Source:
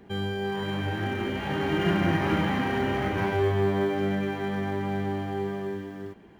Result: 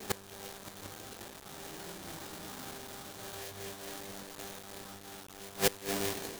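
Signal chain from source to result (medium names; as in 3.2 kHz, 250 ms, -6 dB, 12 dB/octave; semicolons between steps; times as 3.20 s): tone controls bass -5 dB, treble -9 dB; on a send: feedback echo behind a low-pass 109 ms, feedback 65%, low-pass 810 Hz, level -14 dB; on the sum: sample-rate reducer 2.1 kHz, jitter 20%; band-stop 2.6 kHz, Q 15; inverted gate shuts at -25 dBFS, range -26 dB; companded quantiser 4-bit; formant shift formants +3 st; treble shelf 3.7 kHz +10.5 dB; random flutter of the level, depth 50%; trim +7 dB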